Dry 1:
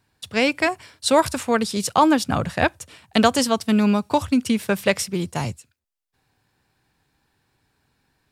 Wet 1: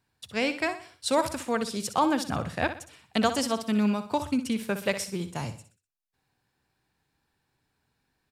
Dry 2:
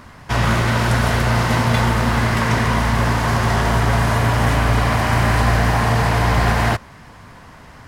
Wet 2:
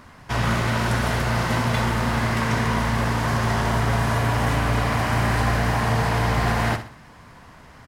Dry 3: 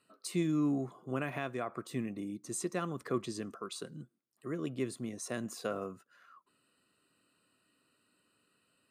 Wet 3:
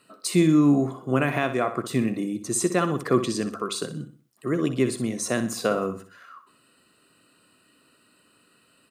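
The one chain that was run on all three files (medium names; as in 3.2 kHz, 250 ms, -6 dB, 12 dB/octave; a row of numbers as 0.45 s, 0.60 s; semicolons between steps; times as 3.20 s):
hum notches 50/100 Hz; on a send: feedback delay 62 ms, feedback 38%, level -11 dB; on the sum: peak normalisation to -9 dBFS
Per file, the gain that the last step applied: -8.0 dB, -5.0 dB, +12.5 dB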